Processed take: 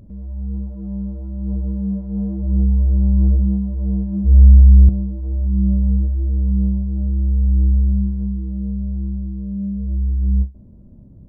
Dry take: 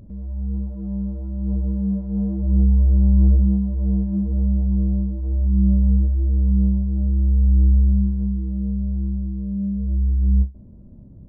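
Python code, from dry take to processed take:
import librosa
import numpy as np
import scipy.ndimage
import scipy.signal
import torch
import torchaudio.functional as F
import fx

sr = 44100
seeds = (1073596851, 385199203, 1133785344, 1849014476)

y = fx.peak_eq(x, sr, hz=65.0, db=13.5, octaves=0.77, at=(4.24, 4.89))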